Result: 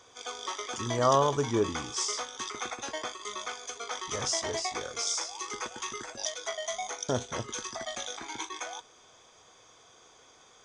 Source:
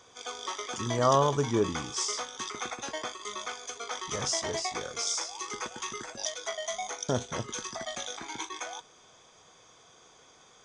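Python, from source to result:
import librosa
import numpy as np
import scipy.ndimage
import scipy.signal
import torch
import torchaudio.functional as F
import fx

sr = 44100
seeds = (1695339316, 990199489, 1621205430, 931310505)

y = fx.peak_eq(x, sr, hz=170.0, db=-6.5, octaves=0.54)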